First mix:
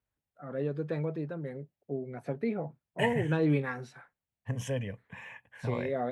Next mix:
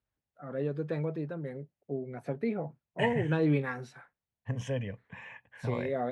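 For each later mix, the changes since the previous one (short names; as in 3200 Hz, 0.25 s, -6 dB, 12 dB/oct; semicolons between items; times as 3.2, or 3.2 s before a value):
second voice: add air absorption 75 m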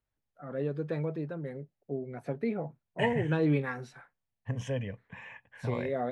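master: remove HPF 41 Hz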